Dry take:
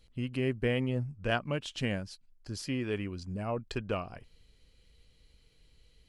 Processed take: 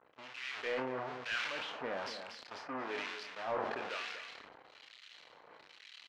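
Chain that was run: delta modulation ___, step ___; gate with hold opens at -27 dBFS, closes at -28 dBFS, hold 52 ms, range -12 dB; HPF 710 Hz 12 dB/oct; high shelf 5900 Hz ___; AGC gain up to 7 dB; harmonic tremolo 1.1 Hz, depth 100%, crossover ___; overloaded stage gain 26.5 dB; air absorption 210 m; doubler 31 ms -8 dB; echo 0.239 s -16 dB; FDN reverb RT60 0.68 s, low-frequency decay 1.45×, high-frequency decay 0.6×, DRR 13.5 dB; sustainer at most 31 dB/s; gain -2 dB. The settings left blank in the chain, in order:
64 kbps, -29 dBFS, -4.5 dB, 1500 Hz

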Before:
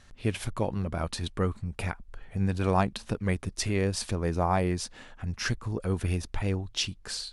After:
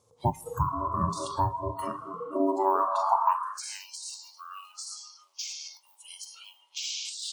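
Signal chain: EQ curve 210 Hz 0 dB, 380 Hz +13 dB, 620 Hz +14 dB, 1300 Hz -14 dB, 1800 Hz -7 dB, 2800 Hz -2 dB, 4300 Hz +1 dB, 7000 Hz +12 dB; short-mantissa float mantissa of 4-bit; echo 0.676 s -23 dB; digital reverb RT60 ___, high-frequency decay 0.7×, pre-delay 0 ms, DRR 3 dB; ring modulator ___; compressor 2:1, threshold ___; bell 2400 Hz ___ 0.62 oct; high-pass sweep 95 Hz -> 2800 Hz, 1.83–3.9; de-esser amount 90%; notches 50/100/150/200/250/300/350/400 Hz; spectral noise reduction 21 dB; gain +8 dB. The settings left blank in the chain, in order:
2.4 s, 480 Hz, -38 dBFS, -4.5 dB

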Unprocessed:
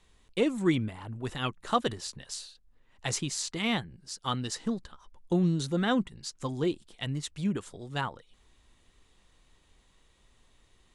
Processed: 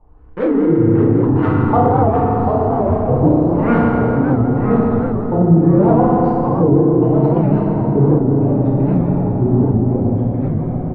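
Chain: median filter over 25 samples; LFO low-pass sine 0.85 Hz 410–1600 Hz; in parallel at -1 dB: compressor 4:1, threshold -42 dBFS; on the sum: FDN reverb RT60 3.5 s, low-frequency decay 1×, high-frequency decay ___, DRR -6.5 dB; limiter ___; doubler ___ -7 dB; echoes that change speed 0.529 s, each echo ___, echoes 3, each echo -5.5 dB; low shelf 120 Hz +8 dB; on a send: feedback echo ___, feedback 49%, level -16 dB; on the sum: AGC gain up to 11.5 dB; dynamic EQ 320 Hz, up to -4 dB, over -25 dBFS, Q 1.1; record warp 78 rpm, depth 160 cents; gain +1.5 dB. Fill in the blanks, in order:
0.55×, -10.5 dBFS, 30 ms, -2 st, 0.111 s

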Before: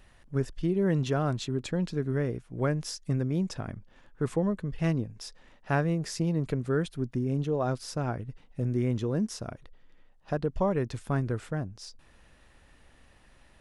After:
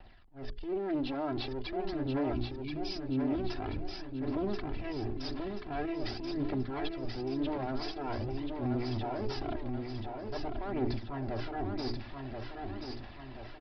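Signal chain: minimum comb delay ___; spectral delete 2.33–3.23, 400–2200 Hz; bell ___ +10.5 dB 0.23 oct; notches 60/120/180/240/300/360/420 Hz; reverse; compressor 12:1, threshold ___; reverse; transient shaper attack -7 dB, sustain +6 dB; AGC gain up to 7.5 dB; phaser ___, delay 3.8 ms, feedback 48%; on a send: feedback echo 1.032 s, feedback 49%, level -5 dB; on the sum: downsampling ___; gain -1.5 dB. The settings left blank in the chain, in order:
3 ms, 780 Hz, -39 dBFS, 0.46 Hz, 11025 Hz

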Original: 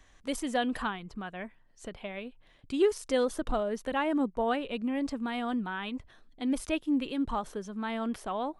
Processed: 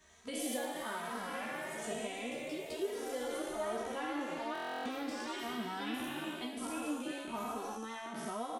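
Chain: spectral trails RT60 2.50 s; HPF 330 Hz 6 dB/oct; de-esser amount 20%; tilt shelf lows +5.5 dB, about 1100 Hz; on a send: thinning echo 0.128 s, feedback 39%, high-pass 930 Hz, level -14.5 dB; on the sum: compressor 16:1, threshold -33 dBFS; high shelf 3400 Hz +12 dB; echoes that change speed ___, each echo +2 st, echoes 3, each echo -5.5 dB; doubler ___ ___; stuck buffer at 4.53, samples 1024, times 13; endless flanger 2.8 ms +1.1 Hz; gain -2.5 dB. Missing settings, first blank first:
86 ms, 13 ms, -5 dB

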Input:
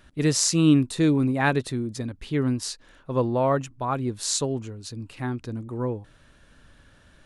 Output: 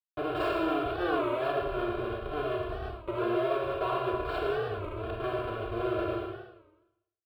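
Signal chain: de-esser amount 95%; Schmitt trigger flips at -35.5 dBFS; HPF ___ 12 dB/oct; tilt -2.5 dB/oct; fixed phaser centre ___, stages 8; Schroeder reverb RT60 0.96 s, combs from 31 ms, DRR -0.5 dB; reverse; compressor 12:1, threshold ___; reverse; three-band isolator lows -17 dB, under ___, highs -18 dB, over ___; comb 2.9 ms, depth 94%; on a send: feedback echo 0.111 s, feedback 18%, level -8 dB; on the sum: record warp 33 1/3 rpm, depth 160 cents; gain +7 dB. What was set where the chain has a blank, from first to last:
58 Hz, 1300 Hz, -31 dBFS, 270 Hz, 3000 Hz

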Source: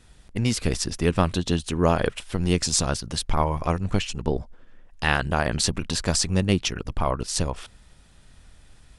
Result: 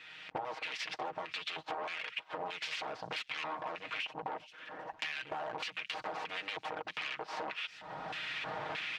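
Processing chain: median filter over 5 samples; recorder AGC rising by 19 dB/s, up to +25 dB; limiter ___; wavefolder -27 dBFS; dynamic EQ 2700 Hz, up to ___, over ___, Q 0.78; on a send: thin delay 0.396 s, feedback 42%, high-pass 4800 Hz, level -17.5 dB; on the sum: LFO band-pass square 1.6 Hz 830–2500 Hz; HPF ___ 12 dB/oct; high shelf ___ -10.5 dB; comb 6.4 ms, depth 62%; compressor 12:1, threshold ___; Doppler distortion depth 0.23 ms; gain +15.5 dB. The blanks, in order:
-12 dBFS, +3 dB, -46 dBFS, 95 Hz, 7400 Hz, -52 dBFS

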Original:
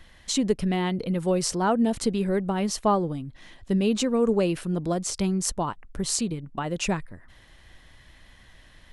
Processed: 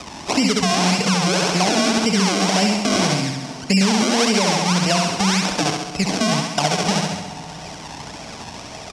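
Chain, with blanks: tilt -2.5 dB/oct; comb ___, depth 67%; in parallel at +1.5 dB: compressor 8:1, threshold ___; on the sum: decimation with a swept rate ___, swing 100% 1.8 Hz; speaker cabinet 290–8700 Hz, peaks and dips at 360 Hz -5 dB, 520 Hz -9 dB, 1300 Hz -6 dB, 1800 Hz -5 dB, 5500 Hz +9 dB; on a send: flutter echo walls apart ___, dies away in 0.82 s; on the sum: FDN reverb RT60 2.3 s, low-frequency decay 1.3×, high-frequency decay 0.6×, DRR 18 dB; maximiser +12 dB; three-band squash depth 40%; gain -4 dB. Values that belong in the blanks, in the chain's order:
1.5 ms, -30 dBFS, 34×, 11.5 m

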